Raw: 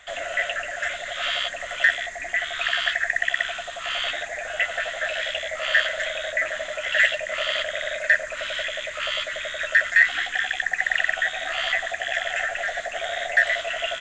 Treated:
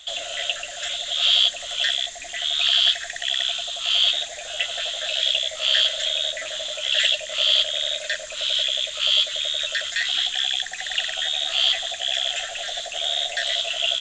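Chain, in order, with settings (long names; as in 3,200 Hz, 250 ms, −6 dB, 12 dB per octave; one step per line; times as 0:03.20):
high shelf with overshoot 2,600 Hz +10.5 dB, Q 3
level −4 dB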